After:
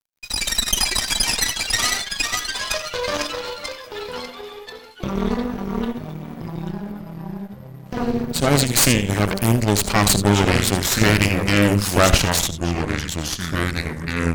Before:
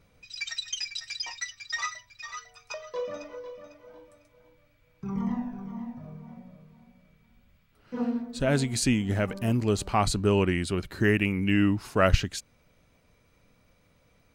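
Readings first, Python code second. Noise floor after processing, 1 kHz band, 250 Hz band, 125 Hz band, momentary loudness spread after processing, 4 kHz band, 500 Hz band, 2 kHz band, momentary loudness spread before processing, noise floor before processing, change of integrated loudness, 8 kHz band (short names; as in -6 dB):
-39 dBFS, +9.5 dB, +7.0 dB, +9.0 dB, 16 LU, +14.5 dB, +7.0 dB, +10.5 dB, 18 LU, -65 dBFS, +8.5 dB, +16.5 dB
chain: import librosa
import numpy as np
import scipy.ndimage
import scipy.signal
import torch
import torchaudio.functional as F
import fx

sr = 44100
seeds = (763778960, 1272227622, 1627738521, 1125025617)

p1 = fx.high_shelf(x, sr, hz=3700.0, db=11.0)
p2 = fx.over_compress(p1, sr, threshold_db=-36.0, ratio=-1.0)
p3 = p1 + (p2 * librosa.db_to_amplitude(-2.0))
p4 = np.sign(p3) * np.maximum(np.abs(p3) - 10.0 ** (-43.0 / 20.0), 0.0)
p5 = p4 + fx.echo_single(p4, sr, ms=78, db=-11.5, dry=0)
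p6 = fx.echo_pitch(p5, sr, ms=424, semitones=-3, count=3, db_per_echo=-6.0)
p7 = fx.cheby_harmonics(p6, sr, harmonics=(8,), levels_db=(-12,), full_scale_db=-5.0)
y = p7 * librosa.db_to_amplitude(3.0)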